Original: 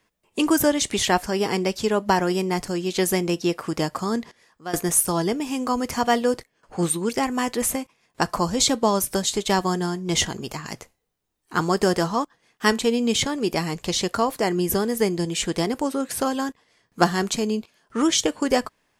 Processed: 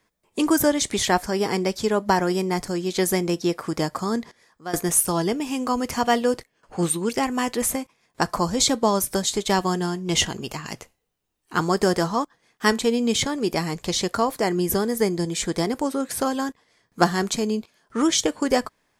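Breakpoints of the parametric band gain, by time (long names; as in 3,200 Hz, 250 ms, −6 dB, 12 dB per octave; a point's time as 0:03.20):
parametric band 2,800 Hz 0.21 octaves
−7.5 dB
from 0:04.84 +1.5 dB
from 0:07.62 −4.5 dB
from 0:09.55 +4.5 dB
from 0:11.60 −5 dB
from 0:14.85 −11.5 dB
from 0:15.66 −5 dB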